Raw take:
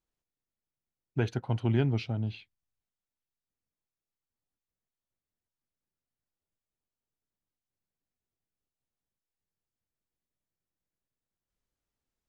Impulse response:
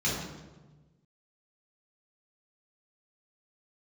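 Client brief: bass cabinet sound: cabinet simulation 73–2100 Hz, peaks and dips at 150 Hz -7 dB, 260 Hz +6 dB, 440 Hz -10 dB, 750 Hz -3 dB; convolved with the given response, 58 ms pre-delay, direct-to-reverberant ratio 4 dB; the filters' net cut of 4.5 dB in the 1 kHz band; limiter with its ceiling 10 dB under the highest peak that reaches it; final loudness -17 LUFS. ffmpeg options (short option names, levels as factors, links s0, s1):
-filter_complex "[0:a]equalizer=f=1000:t=o:g=-3.5,alimiter=level_in=1.12:limit=0.0631:level=0:latency=1,volume=0.891,asplit=2[s0][s1];[1:a]atrim=start_sample=2205,adelay=58[s2];[s1][s2]afir=irnorm=-1:irlink=0,volume=0.2[s3];[s0][s3]amix=inputs=2:normalize=0,highpass=f=73:w=0.5412,highpass=f=73:w=1.3066,equalizer=f=150:t=q:w=4:g=-7,equalizer=f=260:t=q:w=4:g=6,equalizer=f=440:t=q:w=4:g=-10,equalizer=f=750:t=q:w=4:g=-3,lowpass=f=2100:w=0.5412,lowpass=f=2100:w=1.3066,volume=7.08"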